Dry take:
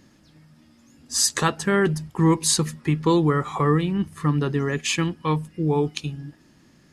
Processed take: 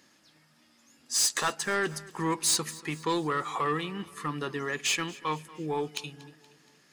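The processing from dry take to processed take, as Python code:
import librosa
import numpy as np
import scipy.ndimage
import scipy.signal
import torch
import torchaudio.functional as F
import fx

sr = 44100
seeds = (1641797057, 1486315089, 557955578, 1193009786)

y = fx.highpass(x, sr, hz=960.0, slope=6)
y = 10.0 ** (-20.0 / 20.0) * np.tanh(y / 10.0 ** (-20.0 / 20.0))
y = fx.echo_feedback(y, sr, ms=236, feedback_pct=51, wet_db=-20.5)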